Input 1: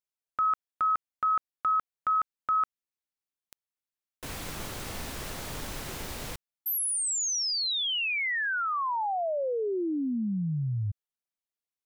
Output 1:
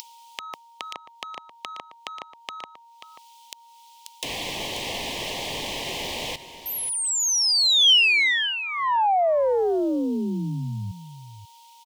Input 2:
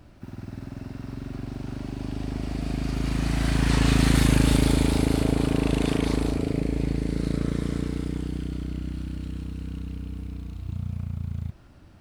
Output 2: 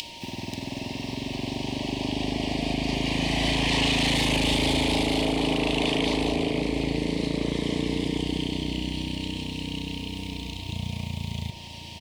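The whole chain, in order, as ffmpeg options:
ffmpeg -i in.wav -filter_complex "[0:a]acrossover=split=230|2900[link_01][link_02][link_03];[link_03]acompressor=mode=upward:threshold=-48dB:ratio=4:attack=85:release=415:knee=2.83:detection=peak[link_04];[link_01][link_02][link_04]amix=inputs=3:normalize=0,aeval=exprs='val(0)+0.00158*sin(2*PI*930*n/s)':channel_layout=same,asplit=2[link_05][link_06];[link_06]adynamicsmooth=sensitivity=2.5:basefreq=6800,volume=2dB[link_07];[link_05][link_07]amix=inputs=2:normalize=0,asuperstop=centerf=1400:order=4:qfactor=1.3,aecho=1:1:536:0.224,asplit=2[link_08][link_09];[link_09]highpass=frequency=720:poles=1,volume=19dB,asoftclip=type=tanh:threshold=0dB[link_10];[link_08][link_10]amix=inputs=2:normalize=0,lowpass=frequency=6400:poles=1,volume=-6dB,alimiter=limit=-8.5dB:level=0:latency=1:release=52,equalizer=frequency=3100:width=4.4:gain=5.5,volume=-7.5dB" out.wav

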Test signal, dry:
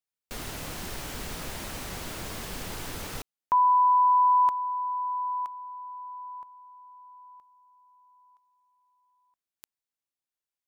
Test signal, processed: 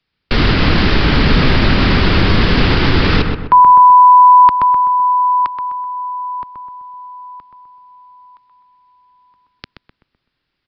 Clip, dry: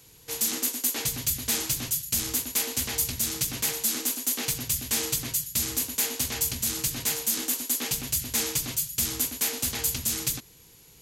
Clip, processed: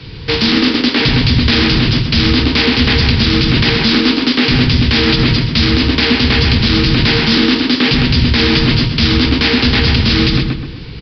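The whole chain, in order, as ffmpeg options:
ffmpeg -i in.wav -filter_complex "[0:a]highshelf=frequency=2400:gain=-11,acrossover=split=240|1200[link_01][link_02][link_03];[link_01]asoftclip=type=tanh:threshold=-40dB[link_04];[link_04][link_02][link_03]amix=inputs=3:normalize=0,equalizer=frequency=690:width_type=o:width=1.7:gain=-12.5,asplit=2[link_05][link_06];[link_06]adelay=127,lowpass=frequency=2000:poles=1,volume=-4.5dB,asplit=2[link_07][link_08];[link_08]adelay=127,lowpass=frequency=2000:poles=1,volume=0.44,asplit=2[link_09][link_10];[link_10]adelay=127,lowpass=frequency=2000:poles=1,volume=0.44,asplit=2[link_11][link_12];[link_12]adelay=127,lowpass=frequency=2000:poles=1,volume=0.44,asplit=2[link_13][link_14];[link_14]adelay=127,lowpass=frequency=2000:poles=1,volume=0.44[link_15];[link_07][link_09][link_11][link_13][link_15]amix=inputs=5:normalize=0[link_16];[link_05][link_16]amix=inputs=2:normalize=0,aresample=11025,aresample=44100,alimiter=level_in=32.5dB:limit=-1dB:release=50:level=0:latency=1,volume=-1dB" out.wav

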